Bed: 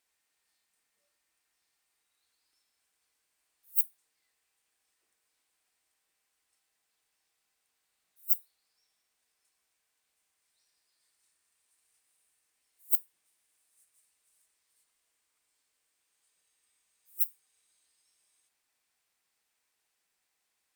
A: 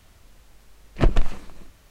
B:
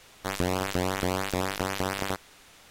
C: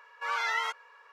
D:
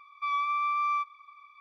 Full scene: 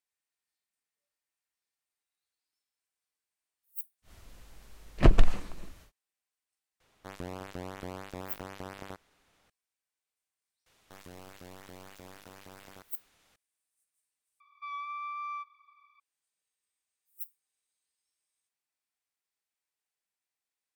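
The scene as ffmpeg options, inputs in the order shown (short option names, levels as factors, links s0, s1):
-filter_complex "[2:a]asplit=2[s0][s1];[0:a]volume=0.237[s2];[s0]highshelf=f=2300:g=-7[s3];[s1]volume=16.8,asoftclip=hard,volume=0.0596[s4];[s2]asplit=2[s5][s6];[s5]atrim=end=14.404[s7];[4:a]atrim=end=1.6,asetpts=PTS-STARTPTS,volume=0.316[s8];[s6]atrim=start=15.996[s9];[1:a]atrim=end=1.9,asetpts=PTS-STARTPTS,volume=0.891,afade=t=in:d=0.1,afade=t=out:st=1.8:d=0.1,adelay=4020[s10];[s3]atrim=end=2.7,asetpts=PTS-STARTPTS,volume=0.237,afade=t=in:d=0.004:c=hsin,afade=t=out:st=2.696:d=0.004:c=hsin,adelay=6800[s11];[s4]atrim=end=2.7,asetpts=PTS-STARTPTS,volume=0.2,afade=t=in:d=0.004:c=hsin,afade=t=out:st=2.696:d=0.004:c=hsin,adelay=470106S[s12];[s7][s8]acrossfade=d=0.004:c1=hsin:c2=hsin[s13];[s13][s9]acrossfade=d=0.004:c1=hsin:c2=hsin[s14];[s14][s10][s11][s12]amix=inputs=4:normalize=0"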